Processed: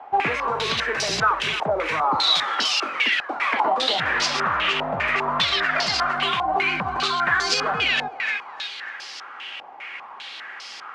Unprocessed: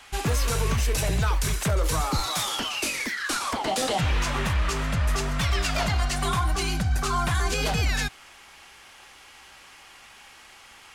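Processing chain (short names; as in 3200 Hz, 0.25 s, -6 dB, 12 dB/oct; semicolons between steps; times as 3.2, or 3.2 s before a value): Bessel high-pass 350 Hz, order 2; on a send: thinning echo 0.297 s, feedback 52%, high-pass 1100 Hz, level -8 dB; on the sum: compressor, threshold -30 dBFS, peak gain reduction 8 dB; stepped low-pass 5 Hz 780–5000 Hz; gain +7.5 dB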